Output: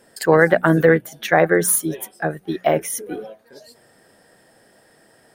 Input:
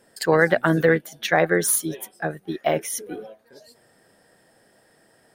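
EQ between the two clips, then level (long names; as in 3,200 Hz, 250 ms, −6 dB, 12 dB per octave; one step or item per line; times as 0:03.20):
mains-hum notches 60/120/180 Hz
dynamic equaliser 4,200 Hz, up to −8 dB, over −42 dBFS, Q 0.88
+4.5 dB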